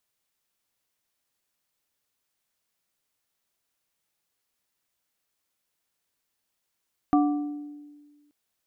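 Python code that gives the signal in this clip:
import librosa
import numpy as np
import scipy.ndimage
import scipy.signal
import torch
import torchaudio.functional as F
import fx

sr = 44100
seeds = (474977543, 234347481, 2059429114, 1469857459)

y = fx.strike_glass(sr, length_s=1.18, level_db=-16.5, body='plate', hz=293.0, decay_s=1.57, tilt_db=5.0, modes=3)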